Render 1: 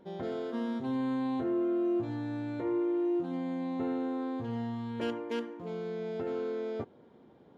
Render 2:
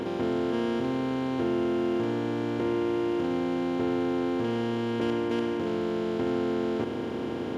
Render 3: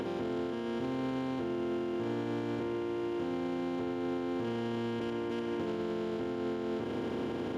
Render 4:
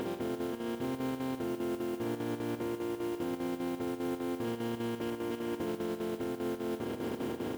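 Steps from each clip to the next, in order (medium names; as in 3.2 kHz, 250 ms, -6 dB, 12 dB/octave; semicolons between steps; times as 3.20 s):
spectral levelling over time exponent 0.2
peak limiter -27.5 dBFS, peak gain reduction 10.5 dB
square tremolo 5 Hz, depth 60%, duty 75%; modulation noise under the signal 21 dB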